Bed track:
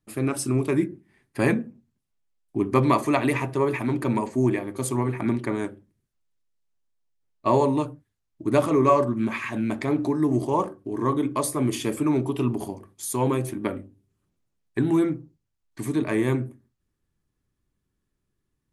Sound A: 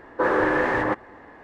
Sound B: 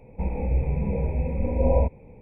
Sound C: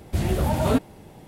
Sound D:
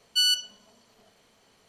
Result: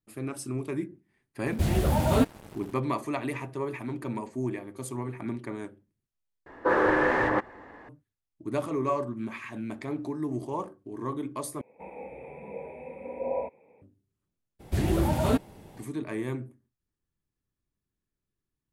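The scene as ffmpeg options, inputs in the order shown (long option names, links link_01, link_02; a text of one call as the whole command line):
ffmpeg -i bed.wav -i cue0.wav -i cue1.wav -i cue2.wav -filter_complex "[3:a]asplit=2[link_01][link_02];[0:a]volume=-9.5dB[link_03];[link_01]acrusher=bits=6:mix=0:aa=0.5[link_04];[2:a]highpass=450[link_05];[link_03]asplit=3[link_06][link_07][link_08];[link_06]atrim=end=6.464[link_09];[1:a]atrim=end=1.43,asetpts=PTS-STARTPTS,volume=-2dB[link_10];[link_07]atrim=start=7.886:end=11.614[link_11];[link_05]atrim=end=2.21,asetpts=PTS-STARTPTS,volume=-4.5dB[link_12];[link_08]atrim=start=13.816[link_13];[link_04]atrim=end=1.27,asetpts=PTS-STARTPTS,volume=-1.5dB,afade=type=in:duration=0.004:curve=hsin,afade=type=out:start_time=1.266:duration=0.004:curve=hsin,adelay=1460[link_14];[link_02]atrim=end=1.27,asetpts=PTS-STARTPTS,volume=-3.5dB,afade=type=in:duration=0.02,afade=type=out:start_time=1.25:duration=0.02,adelay=14590[link_15];[link_09][link_10]acrossfade=duration=0.004:curve1=hsin:curve2=hsin[link_16];[link_16][link_11]acrossfade=duration=0.004:curve1=hsin:curve2=hsin[link_17];[link_17][link_12]acrossfade=duration=0.004:curve1=hsin:curve2=hsin[link_18];[link_18][link_13]acrossfade=duration=0.004:curve1=hsin:curve2=hsin[link_19];[link_19][link_14][link_15]amix=inputs=3:normalize=0" out.wav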